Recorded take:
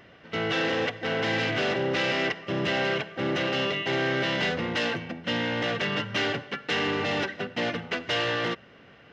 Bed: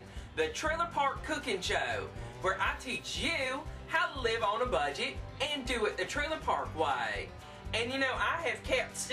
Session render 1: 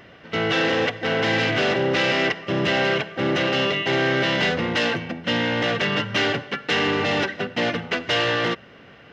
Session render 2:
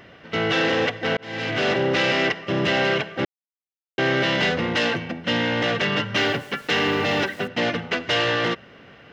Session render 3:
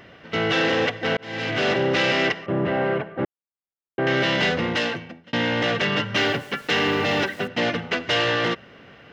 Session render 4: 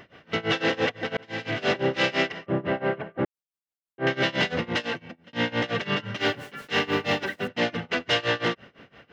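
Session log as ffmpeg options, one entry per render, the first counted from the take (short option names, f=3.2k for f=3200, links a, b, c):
-af "volume=5.5dB"
-filter_complex "[0:a]asettb=1/sr,asplit=3[a][b][c];[a]atrim=end=6.174[d];[b]atrim=start=6.17:end=7.48,asetpts=PTS-STARTPTS,afade=t=in:d=0.004:c=qsin,afade=t=out:st=1.306:d=0.004:c=qsin,aeval=exprs='val(0)*gte(abs(val(0)),0.0075)':c=same[e];[c]atrim=start=7.476[f];[d][e]acrossfade=d=0.004:c1=hsin:c2=qsin[g];[g][f]acrossfade=d=0.004:c1=qsin:c2=hsin,asplit=4[h][i][j][k];[h]atrim=end=1.17,asetpts=PTS-STARTPTS,afade=t=out:st=1.166:d=0.004:c=hsin[l];[i]atrim=start=1.17:end=3.25,asetpts=PTS-STARTPTS,afade=t=in:d=0.52,afade=t=out:st=2.076:d=0.004:c=hsin[m];[j]atrim=start=3.25:end=3.98,asetpts=PTS-STARTPTS,volume=0[n];[k]atrim=start=3.98,asetpts=PTS-STARTPTS,afade=t=in:d=0.004:c=hsin[o];[l][m][n][o]concat=n=4:v=0:a=1"
-filter_complex "[0:a]asettb=1/sr,asplit=3[a][b][c];[a]atrim=end=2.464[d];[b]atrim=start=2.46:end=4.07,asetpts=PTS-STARTPTS,afade=t=in:d=0.004:c=qsin,afade=t=out:st=1.606:d=0.004:c=qsin,lowpass=1.3k[e];[c]atrim=start=4.066[f];[d][e]acrossfade=d=0.004:c1=hsin:c2=qsin[g];[g][f]acrossfade=d=0.004:c1=qsin:c2=hsin,asplit=2[h][i];[h]atrim=end=5.33,asetpts=PTS-STARTPTS,afade=t=out:st=4.68:d=0.65[j];[i]atrim=start=5.33,asetpts=PTS-STARTPTS,afade=t=in:d=0.004:c=hsin[k];[j][k]concat=n=2:v=0:a=1"
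-af "tremolo=f=5.9:d=0.93"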